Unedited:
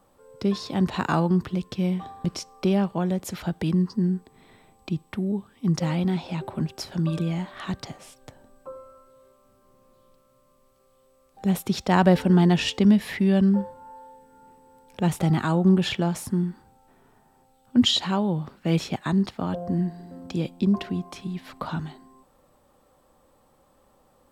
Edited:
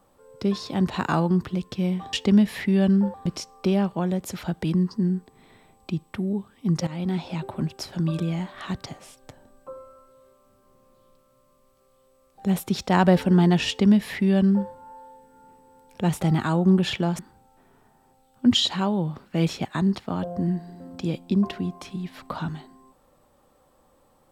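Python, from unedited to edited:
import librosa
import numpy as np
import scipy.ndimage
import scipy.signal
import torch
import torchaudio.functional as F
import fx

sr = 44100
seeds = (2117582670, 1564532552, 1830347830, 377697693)

y = fx.edit(x, sr, fx.fade_in_from(start_s=5.86, length_s=0.4, curve='qsin', floor_db=-15.5),
    fx.duplicate(start_s=12.66, length_s=1.01, to_s=2.13),
    fx.cut(start_s=16.18, length_s=0.32), tone=tone)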